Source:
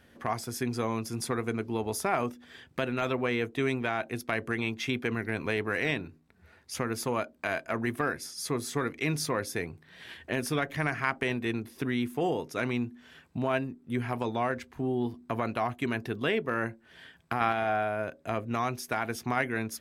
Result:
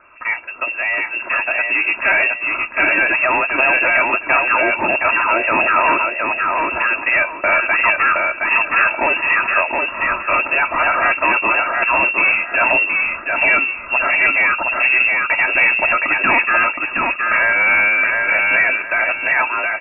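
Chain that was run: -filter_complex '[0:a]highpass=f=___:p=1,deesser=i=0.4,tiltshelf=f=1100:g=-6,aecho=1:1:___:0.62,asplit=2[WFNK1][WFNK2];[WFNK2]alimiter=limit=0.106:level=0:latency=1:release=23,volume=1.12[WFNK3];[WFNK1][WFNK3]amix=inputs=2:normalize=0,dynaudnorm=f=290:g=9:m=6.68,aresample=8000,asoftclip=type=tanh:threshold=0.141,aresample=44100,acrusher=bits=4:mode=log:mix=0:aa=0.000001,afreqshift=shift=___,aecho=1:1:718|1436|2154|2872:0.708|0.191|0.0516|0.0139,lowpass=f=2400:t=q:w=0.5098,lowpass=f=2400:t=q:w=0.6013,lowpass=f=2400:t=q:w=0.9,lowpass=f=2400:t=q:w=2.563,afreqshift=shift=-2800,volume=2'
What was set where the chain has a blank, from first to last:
140, 3, -170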